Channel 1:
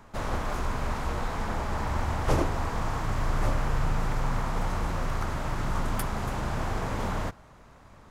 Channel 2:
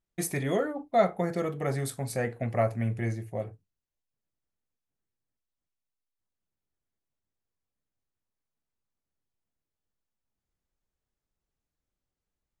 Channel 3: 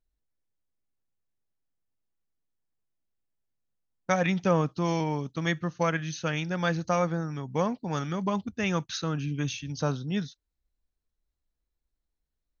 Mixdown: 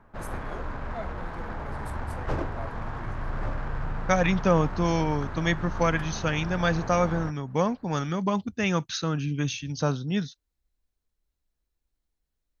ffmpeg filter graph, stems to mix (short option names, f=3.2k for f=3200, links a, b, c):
-filter_complex "[0:a]equalizer=f=1.6k:t=o:w=0.29:g=5.5,adynamicsmooth=sensitivity=2.5:basefreq=2.1k,volume=-4.5dB[a];[1:a]volume=-15dB[b];[2:a]volume=2.5dB[c];[a][b][c]amix=inputs=3:normalize=0"